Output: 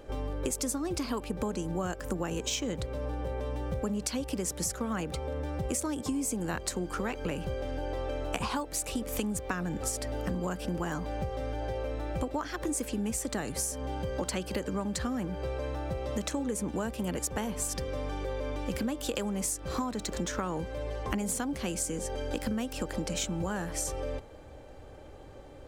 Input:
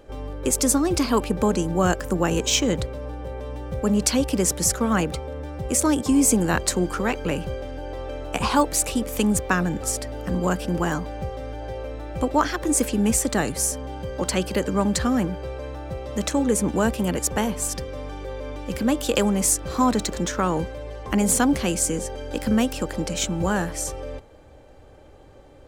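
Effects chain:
downward compressor 12 to 1, threshold −29 dBFS, peak gain reduction 17 dB

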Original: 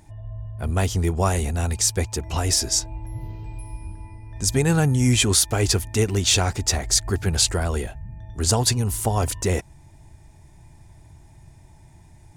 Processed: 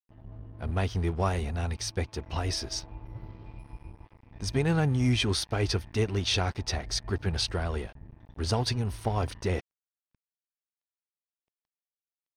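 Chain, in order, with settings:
dead-zone distortion −37.5 dBFS
Savitzky-Golay smoothing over 15 samples
level −5.5 dB

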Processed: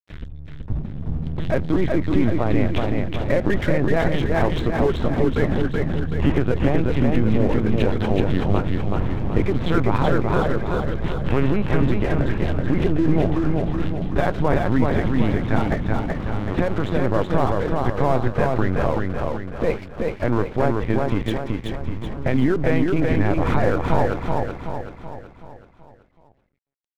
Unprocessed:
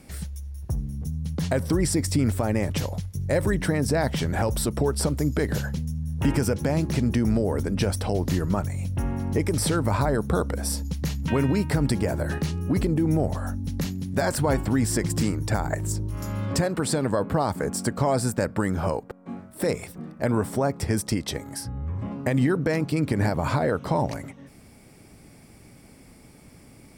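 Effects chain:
linear-prediction vocoder at 8 kHz pitch kept
dead-zone distortion −39.5 dBFS
repeating echo 378 ms, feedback 49%, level −3 dB
level +4 dB

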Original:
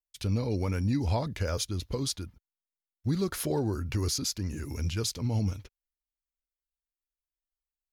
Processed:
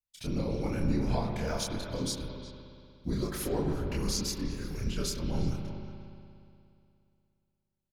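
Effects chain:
random phases in short frames
multi-voice chorus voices 6, 0.5 Hz, delay 28 ms, depth 3.8 ms
far-end echo of a speakerphone 360 ms, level −10 dB
on a send at −4 dB: convolution reverb RT60 2.6 s, pre-delay 59 ms

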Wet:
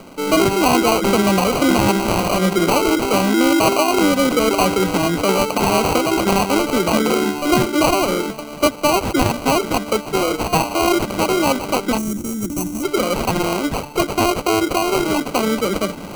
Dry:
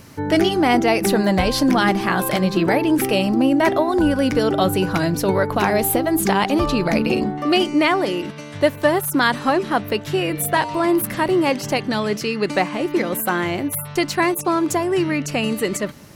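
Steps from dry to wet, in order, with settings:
Butterworth high-pass 170 Hz 72 dB per octave
formants moved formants +2 semitones
in parallel at −2.5 dB: brickwall limiter −14.5 dBFS, peak gain reduction 12 dB
on the sum: decimation without filtering 25×
gain on a spectral selection 0:11.98–0:12.83, 370–5,500 Hz −16 dB
reversed playback
upward compression, threshold −20 dBFS
reversed playback
level −1 dB

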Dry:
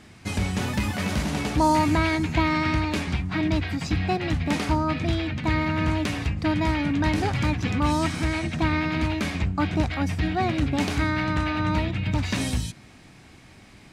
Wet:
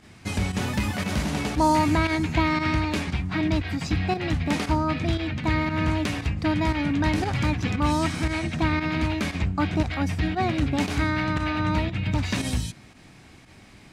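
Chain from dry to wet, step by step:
fake sidechain pumping 116 BPM, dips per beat 1, −10 dB, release 70 ms

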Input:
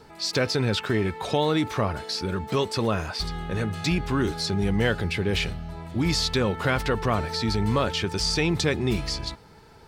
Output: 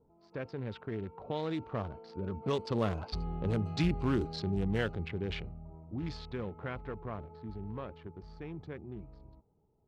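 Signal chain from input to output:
adaptive Wiener filter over 25 samples
source passing by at 0:03.50, 9 m/s, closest 8 metres
low-pass that shuts in the quiet parts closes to 790 Hz, open at −23 dBFS
level −3.5 dB

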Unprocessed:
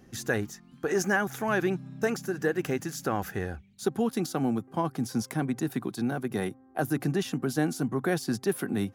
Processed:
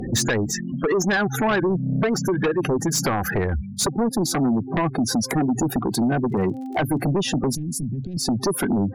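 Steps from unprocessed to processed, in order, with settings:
mu-law and A-law mismatch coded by mu
gate on every frequency bin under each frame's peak −15 dB strong
0:04.96–0:05.56: parametric band 140 Hz −6.5 dB 1 octave
0:06.28–0:07.03: surface crackle 53 per second −54 dBFS
downward compressor 6 to 1, threshold −34 dBFS, peak gain reduction 13 dB
sine wavefolder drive 11 dB, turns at −21 dBFS
0:07.55–0:08.17: Chebyshev band-stop filter 150–8,100 Hz, order 2
level +4.5 dB

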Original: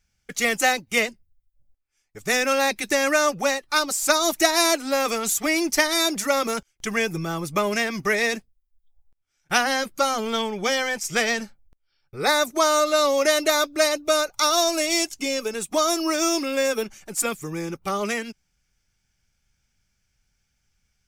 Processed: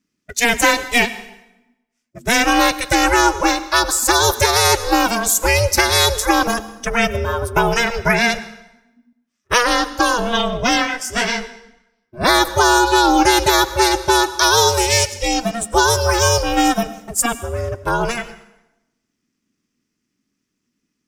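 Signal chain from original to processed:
noise reduction from a noise print of the clip's start 11 dB
ring modulation 240 Hz
dense smooth reverb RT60 0.92 s, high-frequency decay 0.85×, pre-delay 85 ms, DRR 15.5 dB
boost into a limiter +11.5 dB
0:10.85–0:12.20: micro pitch shift up and down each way 40 cents → 23 cents
level −1 dB

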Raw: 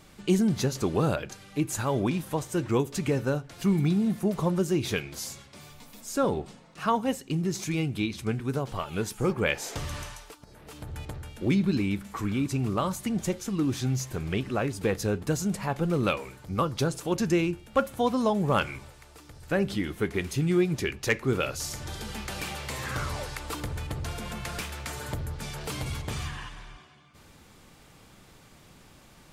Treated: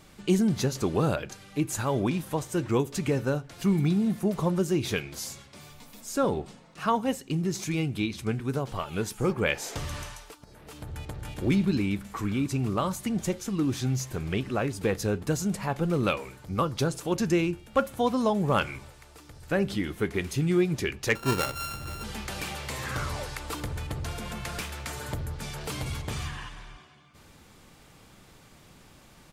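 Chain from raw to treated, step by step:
0:10.89–0:11.36: delay throw 290 ms, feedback 40%, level −0.5 dB
0:21.15–0:22.04: samples sorted by size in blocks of 32 samples

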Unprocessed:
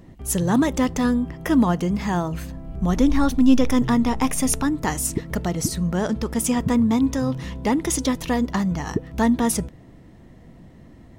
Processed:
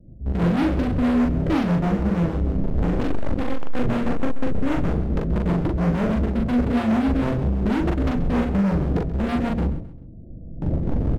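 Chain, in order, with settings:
variable-slope delta modulation 16 kbit/s
camcorder AGC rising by 9.2 dB per second
Butterworth low-pass 660 Hz 48 dB per octave
notch filter 400 Hz, Q 12
noise gate with hold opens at −27 dBFS
low-shelf EQ 120 Hz +11 dB
in parallel at +2 dB: downward compressor, threshold −33 dBFS, peak gain reduction 25 dB
on the sum: hard clipping −28.5 dBFS, distortion −2 dB
rotating-speaker cabinet horn 6.3 Hz
double-tracking delay 41 ms −2.5 dB
on a send: repeating echo 132 ms, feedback 33%, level −15 dB
on the sum: level +8.5 dB

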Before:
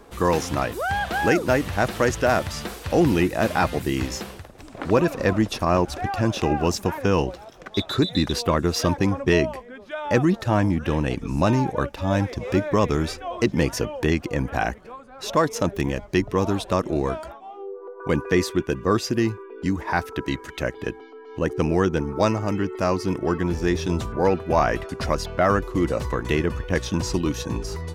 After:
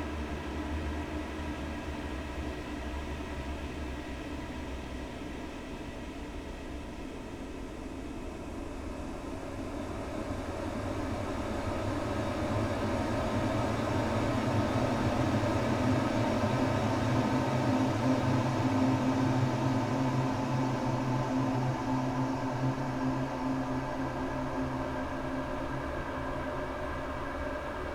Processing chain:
lower of the sound and its delayed copy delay 3.1 ms
extreme stretch with random phases 35×, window 0.50 s, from 0:11.02
level −7.5 dB

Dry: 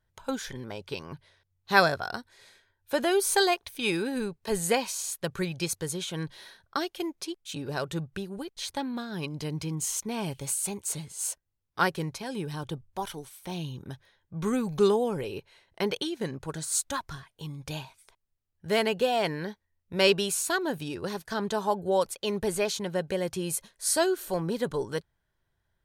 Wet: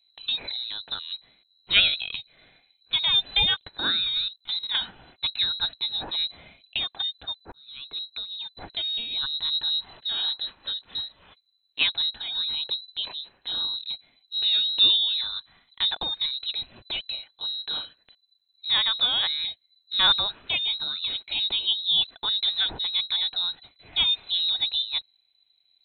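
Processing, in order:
low-shelf EQ 240 Hz +9.5 dB
0:04.20–0:04.75: output level in coarse steps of 14 dB
voice inversion scrambler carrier 4,000 Hz
0:07.52–0:09.21: fade in equal-power

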